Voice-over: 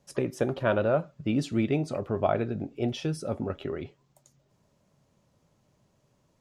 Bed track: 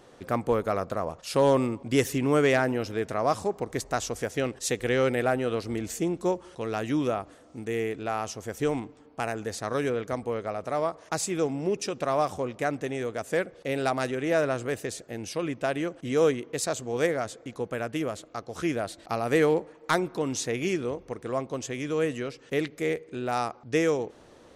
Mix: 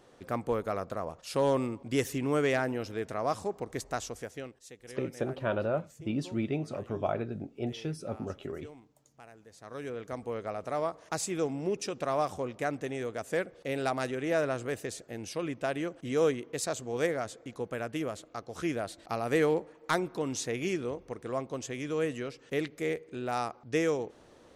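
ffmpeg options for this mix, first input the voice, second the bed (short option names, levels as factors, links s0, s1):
-filter_complex "[0:a]adelay=4800,volume=0.531[s0];[1:a]volume=4.22,afade=t=out:st=3.93:d=0.7:silence=0.149624,afade=t=in:st=9.51:d=0.98:silence=0.125893[s1];[s0][s1]amix=inputs=2:normalize=0"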